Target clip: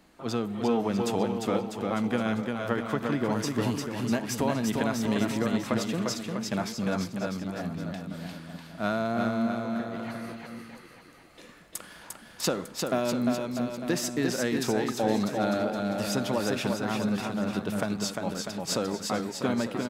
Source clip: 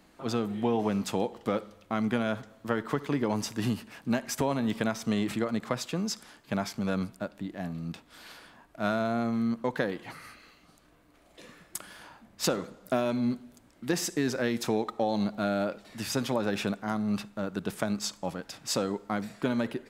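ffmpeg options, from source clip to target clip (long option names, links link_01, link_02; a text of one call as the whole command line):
ffmpeg -i in.wav -filter_complex "[0:a]asplit=3[link_01][link_02][link_03];[link_01]afade=type=out:start_time=9.46:duration=0.02[link_04];[link_02]acompressor=threshold=-40dB:ratio=6,afade=type=in:start_time=9.46:duration=0.02,afade=type=out:start_time=9.93:duration=0.02[link_05];[link_03]afade=type=in:start_time=9.93:duration=0.02[link_06];[link_04][link_05][link_06]amix=inputs=3:normalize=0,aecho=1:1:350|647.5|900.4|1115|1298:0.631|0.398|0.251|0.158|0.1" out.wav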